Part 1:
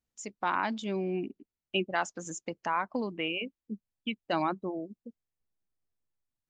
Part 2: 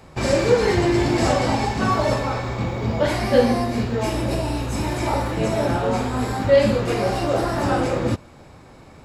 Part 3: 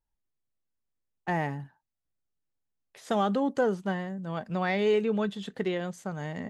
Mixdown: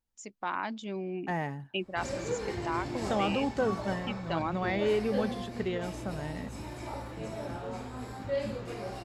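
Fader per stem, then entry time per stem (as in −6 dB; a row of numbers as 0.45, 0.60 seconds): −4.0, −17.0, −3.5 decibels; 0.00, 1.80, 0.00 seconds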